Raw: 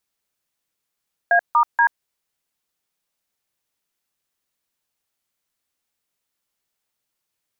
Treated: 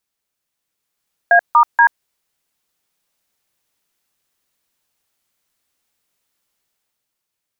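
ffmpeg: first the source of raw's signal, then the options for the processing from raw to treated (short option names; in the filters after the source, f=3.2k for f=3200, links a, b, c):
-f lavfi -i "aevalsrc='0.188*clip(min(mod(t,0.239),0.083-mod(t,0.239))/0.002,0,1)*(eq(floor(t/0.239),0)*(sin(2*PI*697*mod(t,0.239))+sin(2*PI*1633*mod(t,0.239)))+eq(floor(t/0.239),1)*(sin(2*PI*941*mod(t,0.239))+sin(2*PI*1209*mod(t,0.239)))+eq(floor(t/0.239),2)*(sin(2*PI*941*mod(t,0.239))+sin(2*PI*1633*mod(t,0.239))))':d=0.717:s=44100"
-af "dynaudnorm=f=100:g=17:m=7dB"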